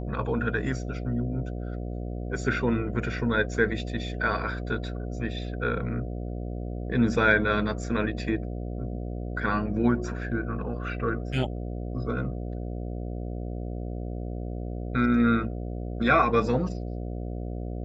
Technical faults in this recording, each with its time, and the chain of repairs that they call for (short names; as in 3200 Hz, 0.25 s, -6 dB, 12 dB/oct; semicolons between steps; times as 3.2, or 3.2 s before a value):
buzz 60 Hz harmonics 12 -33 dBFS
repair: de-hum 60 Hz, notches 12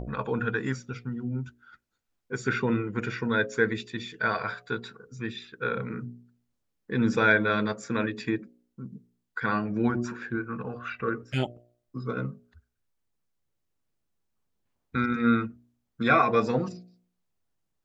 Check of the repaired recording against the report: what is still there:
none